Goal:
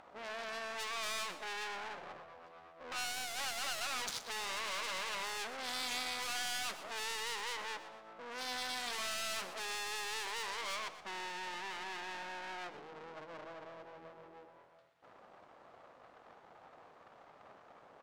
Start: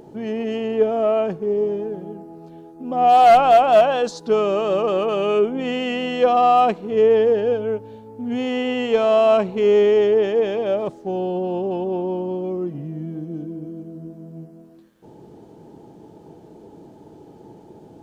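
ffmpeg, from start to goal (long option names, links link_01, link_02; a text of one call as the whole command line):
ffmpeg -i in.wav -filter_complex "[0:a]asplit=2[link_01][link_02];[link_02]acontrast=78,volume=-2.5dB[link_03];[link_01][link_03]amix=inputs=2:normalize=0,aeval=exprs='(tanh(8.91*val(0)+0.25)-tanh(0.25))/8.91':channel_layout=same,aeval=exprs='abs(val(0))':channel_layout=same,aderivative,adynamicsmooth=sensitivity=7.5:basefreq=1600,asplit=2[link_04][link_05];[link_05]aecho=0:1:122|244|366|488:0.224|0.0873|0.0341|0.0133[link_06];[link_04][link_06]amix=inputs=2:normalize=0,volume=4.5dB" out.wav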